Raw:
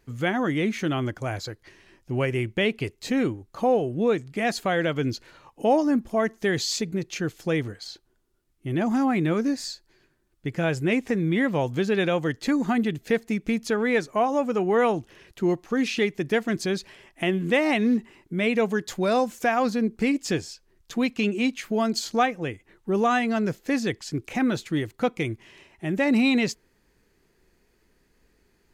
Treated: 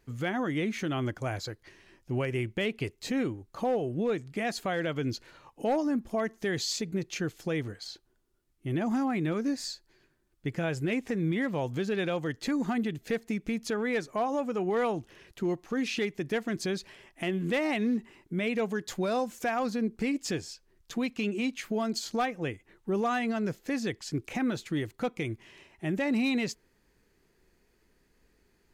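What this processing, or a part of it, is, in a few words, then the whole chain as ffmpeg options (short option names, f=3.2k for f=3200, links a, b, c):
clipper into limiter: -af "asoftclip=type=hard:threshold=-15dB,alimiter=limit=-19dB:level=0:latency=1:release=147,volume=-3dB"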